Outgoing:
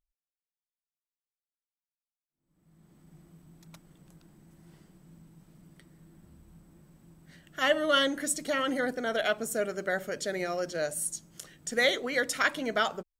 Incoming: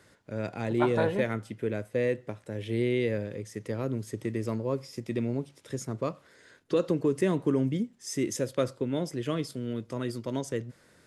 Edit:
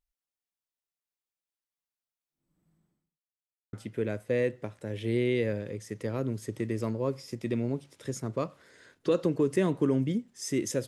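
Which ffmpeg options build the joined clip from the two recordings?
-filter_complex "[0:a]apad=whole_dur=10.87,atrim=end=10.87,asplit=2[a][b];[a]atrim=end=3.21,asetpts=PTS-STARTPTS,afade=t=out:st=2.41:d=0.8:c=qua[c];[b]atrim=start=3.21:end=3.73,asetpts=PTS-STARTPTS,volume=0[d];[1:a]atrim=start=1.38:end=8.52,asetpts=PTS-STARTPTS,afade=t=in:d=0.004:c=hsin[e];[c][d][e]concat=n=3:v=0:a=1"

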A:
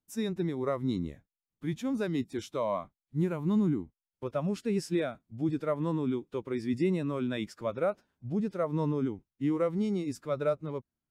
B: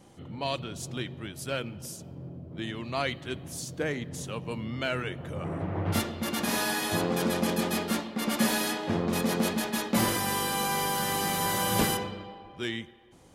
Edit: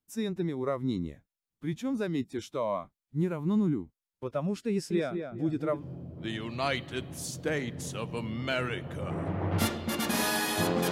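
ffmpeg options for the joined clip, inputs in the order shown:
-filter_complex "[0:a]asettb=1/sr,asplit=3[a][b][c];[a]atrim=end=4.704[d];[b]atrim=start=4.7:end=5.84,asetpts=PTS-STARTPTS,afade=t=in:d=0.004:c=qsin,afade=t=out:st=1.136:d=0.004:c=qsin,asplit=2[e][f];[f]adelay=204,lowpass=f=1.8k:p=1,volume=-6dB,asplit=2[g][h];[h]adelay=204,lowpass=f=1.8k:p=1,volume=0.35,asplit=2[i][j];[j]adelay=204,lowpass=f=1.8k:p=1,volume=0.35,asplit=2[k][l];[l]adelay=204,lowpass=f=1.8k:p=1,volume=0.35[m];[e][g][i][k][m]amix=inputs=5:normalize=0,atrim=end_sample=50274[n];[c]atrim=start=5.836[o];[d][n]acrossfade=d=0.004:c1=hsin:c2=qsin[p];[p][o]acrossfade=d=0.004:c1=qsin:c2=hsin,apad=whole_dur=10.91,atrim=end=10.91,atrim=end=5.84,asetpts=PTS-STARTPTS[q];[1:a]atrim=start=2.08:end=7.25,asetpts=PTS-STARTPTS[r];[q][r]acrossfade=d=0.1:c1=tri:c2=tri"

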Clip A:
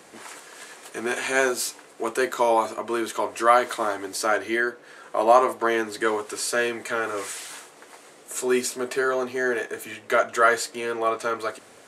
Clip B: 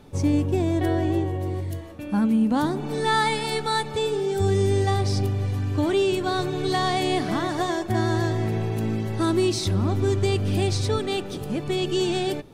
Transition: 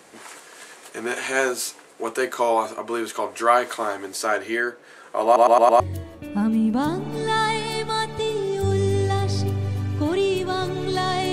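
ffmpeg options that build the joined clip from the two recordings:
-filter_complex "[0:a]apad=whole_dur=11.32,atrim=end=11.32,asplit=5[a][b][c][d][e];[a]atrim=end=5.362[f];[b]atrim=start=5.248:end=5.362[g];[c]atrim=start=5.248:end=5.362[h];[d]atrim=start=5.248:end=5.362[i];[e]atrim=start=5.248:end=5.362[j];[1:a]atrim=start=1.568:end=7.09[k];[f][g]acrossfade=d=0.004:c1=hsin:c2=hsin[l];[l][h]acrossfade=d=0.004:c1=hsin:c2=hsin[m];[m][i]acrossfade=d=0.004:c1=hsin:c2=hsin[n];[n][j]acrossfade=d=0.004:c1=hsin:c2=hsin[o];[o][k]acrossfade=d=0.004:c1=hsin:c2=hsin"

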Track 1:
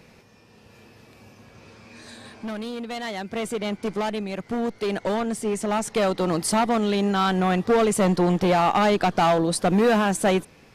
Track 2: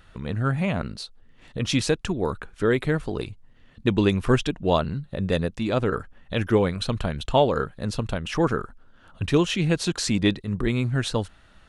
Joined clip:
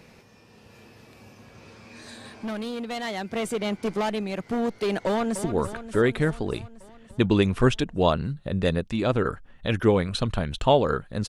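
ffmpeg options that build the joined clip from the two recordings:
-filter_complex "[0:a]apad=whole_dur=11.28,atrim=end=11.28,atrim=end=5.442[a];[1:a]atrim=start=2.108:end=7.95[b];[a][b]acrossfade=d=0.004:c1=hsin:c2=hsin,asplit=2[c][d];[d]afade=t=in:st=5.06:d=0.01,afade=t=out:st=5.44:d=0.01,aecho=0:1:290|580|870|1160|1450|1740|2030|2320|2610|2900:0.298538|0.208977|0.146284|0.102399|0.071679|0.0501753|0.0351227|0.0245859|0.0172101|0.0120471[e];[c][e]amix=inputs=2:normalize=0"

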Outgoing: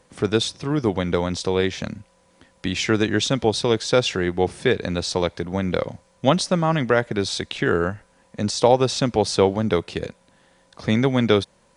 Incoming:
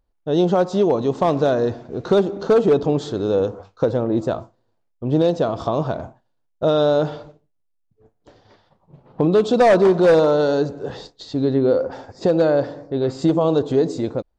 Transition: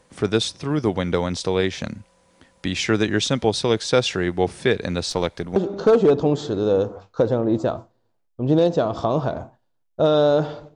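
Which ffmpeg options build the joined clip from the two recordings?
-filter_complex "[0:a]asettb=1/sr,asplit=3[a][b][c];[a]atrim=end=5.104[d];[b]atrim=start=5.1:end=5.56,asetpts=PTS-STARTPTS,afade=t=in:d=0.004:c=qsin,afade=t=out:st=0.456:d=0.004:c=qsin,aeval=exprs='if(lt(val(0),0),0.708*val(0),val(0))':c=same[e];[c]atrim=start=5.556[f];[d][e]acrossfade=d=0.004:c1=hsin:c2=qsin[g];[g][f]acrossfade=d=0.004:c1=qsin:c2=hsin,apad=whole_dur=10.75,atrim=end=10.75,atrim=end=5.562[h];[1:a]atrim=start=2.188:end=7.38[i];[h][i]acrossfade=d=0.004:c1=hsin:c2=hsin"

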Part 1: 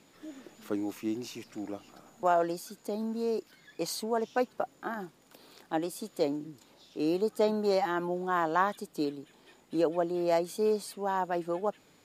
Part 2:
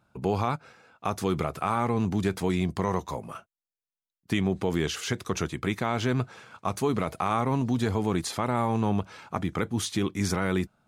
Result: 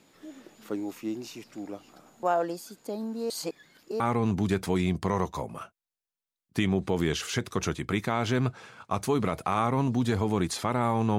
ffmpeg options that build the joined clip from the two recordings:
-filter_complex "[0:a]apad=whole_dur=11.18,atrim=end=11.18,asplit=2[a][b];[a]atrim=end=3.302[c];[b]atrim=start=3.298:end=4.002,asetpts=PTS-STARTPTS,areverse[d];[1:a]atrim=start=1.738:end=8.92[e];[c][d]acrossfade=d=0.004:c1=hsin:c2=hsin[f];[f][e]acrossfade=d=0.004:c1=hsin:c2=hsin"

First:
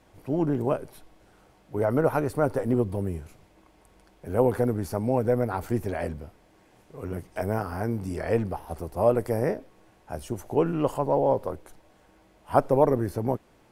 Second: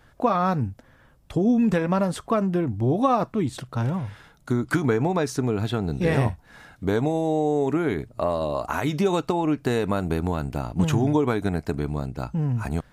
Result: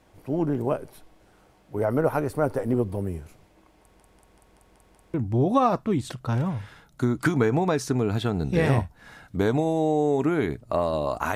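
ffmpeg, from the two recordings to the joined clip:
-filter_complex "[0:a]apad=whole_dur=11.35,atrim=end=11.35,asplit=7[a][b][c][d][e][f][g];[a]atrim=end=4.002[h];[b]atrim=start=3.808:end=4.002[i];[c]atrim=start=3.808:end=4.002[j];[d]atrim=start=3.808:end=4.002[k];[e]atrim=start=3.808:end=4.002[l];[f]atrim=start=3.808:end=4.002[m];[g]atrim=start=3.808:end=4.002[n];[1:a]atrim=start=2.618:end=8.83[o];[h][i]acrossfade=d=0.004:c1=hsin:c2=hsin[p];[p][j]acrossfade=d=0.004:c1=hsin:c2=hsin[q];[q][k]acrossfade=d=0.004:c1=hsin:c2=hsin[r];[r][l]acrossfade=d=0.004:c1=hsin:c2=hsin[s];[s][m]acrossfade=d=0.004:c1=hsin:c2=hsin[t];[t][n]acrossfade=d=0.004:c1=hsin:c2=hsin[u];[u][o]acrossfade=d=0.004:c1=hsin:c2=hsin"

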